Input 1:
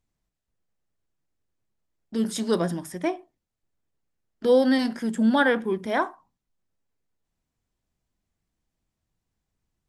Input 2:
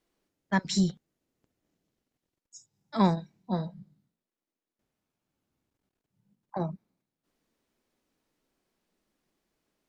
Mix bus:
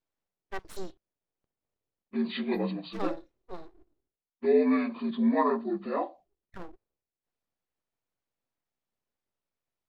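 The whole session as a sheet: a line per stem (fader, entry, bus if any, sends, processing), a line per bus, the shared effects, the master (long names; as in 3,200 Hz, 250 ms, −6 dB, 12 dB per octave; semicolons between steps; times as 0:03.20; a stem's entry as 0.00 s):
−3.5 dB, 0.00 s, no send, partials spread apart or drawn together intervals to 76%; downward expander −44 dBFS
−9.0 dB, 0.00 s, no send, high-shelf EQ 4,500 Hz −8 dB; full-wave rectification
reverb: not used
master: no processing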